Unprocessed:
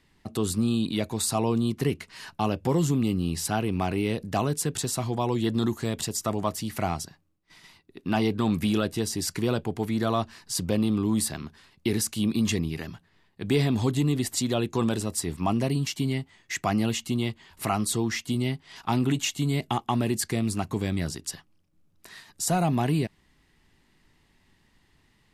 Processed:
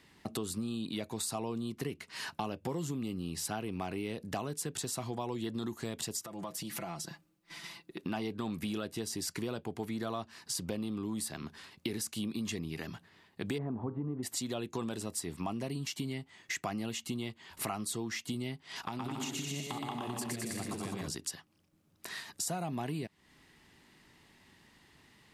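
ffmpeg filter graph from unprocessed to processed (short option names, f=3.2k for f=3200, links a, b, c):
-filter_complex "[0:a]asettb=1/sr,asplit=3[a][b][c];[a]atrim=end=6.244[d];[b]atrim=start=6.24:end=8.01,asetpts=PTS-STARTPTS,afade=t=in:d=0.004:c=qsin,afade=t=out:st=1.766:d=0.004:c=qsin,aecho=1:1:5.9:0.73,atrim=end_sample=78057,acompressor=threshold=-38dB:ratio=8:attack=3.2:release=140:knee=1:detection=peak[e];[c]atrim=start=8.006[f];[d][e]acrossfade=d=0.004:c1=hsin:c2=qsin[g];[g][f]acrossfade=d=0.004:c1=qsin:c2=hsin,asettb=1/sr,asplit=3[h][i][j];[h]atrim=end=13.584[k];[i]atrim=start=13.58:end=14.23,asetpts=PTS-STARTPTS,afade=t=in:d=0.004:c=qsin,afade=t=out:st=0.646:d=0.004:c=qsin,lowpass=f=1.3k:w=0.5412,lowpass=f=1.3k:w=1.3066,bandreject=f=102.7:t=h:w=4,bandreject=f=205.4:t=h:w=4,bandreject=f=308.1:t=h:w=4,bandreject=f=410.8:t=h:w=4,bandreject=f=513.5:t=h:w=4,bandreject=f=616.2:t=h:w=4,bandreject=f=718.9:t=h:w=4,bandreject=f=821.6:t=h:w=4,bandreject=f=924.3:t=h:w=4,bandreject=f=1.027k:t=h:w=4,bandreject=f=1.1297k:t=h:w=4,bandreject=f=1.2324k:t=h:w=4,bandreject=f=1.3351k:t=h:w=4,bandreject=f=1.4378k:t=h:w=4,bandreject=f=1.5405k:t=h:w=4[l];[j]atrim=start=14.226[m];[k][l]acrossfade=d=0.004:c1=hsin:c2=qsin[n];[n][m]acrossfade=d=0.004:c1=qsin:c2=hsin,asettb=1/sr,asplit=3[o][p][q];[o]atrim=end=18.834[r];[p]atrim=start=18.83:end=21.07,asetpts=PTS-STARTPTS,afade=t=in:d=0.004:c=qsin,afade=t=out:st=2.236:d=0.004:c=qsin,acompressor=threshold=-32dB:ratio=6:attack=3.2:release=140:knee=1:detection=peak,aecho=1:1:120|210|277.5|328.1|366.1|394.6:0.794|0.631|0.501|0.398|0.316|0.251,atrim=end_sample=98784[s];[q]atrim=start=21.066[t];[r][s]acrossfade=d=0.004:c1=hsin:c2=qsin[u];[u][t]acrossfade=d=0.004:c1=qsin:c2=hsin,highpass=f=160:p=1,acompressor=threshold=-41dB:ratio=4,volume=4.5dB"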